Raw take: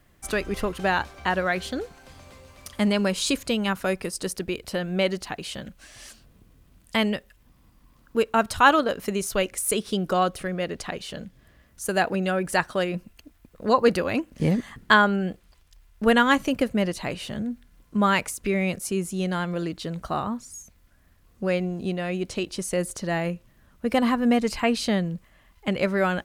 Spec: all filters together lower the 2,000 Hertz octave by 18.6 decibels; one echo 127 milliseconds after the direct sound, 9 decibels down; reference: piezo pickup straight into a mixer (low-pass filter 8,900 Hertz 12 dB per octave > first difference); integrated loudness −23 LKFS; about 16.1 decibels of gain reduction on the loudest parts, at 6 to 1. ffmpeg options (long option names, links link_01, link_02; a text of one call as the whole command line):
ffmpeg -i in.wav -af "equalizer=frequency=2000:width_type=o:gain=-9,acompressor=threshold=-32dB:ratio=6,lowpass=8900,aderivative,aecho=1:1:127:0.355,volume=23dB" out.wav